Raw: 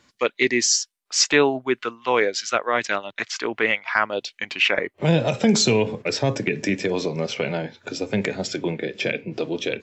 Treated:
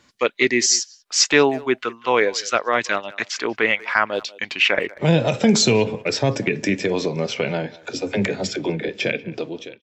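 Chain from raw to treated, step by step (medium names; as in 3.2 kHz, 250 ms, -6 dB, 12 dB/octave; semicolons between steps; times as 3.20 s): fade out at the end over 0.60 s; 7.78–8.89 s: phase dispersion lows, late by 47 ms, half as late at 330 Hz; speakerphone echo 190 ms, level -20 dB; trim +2 dB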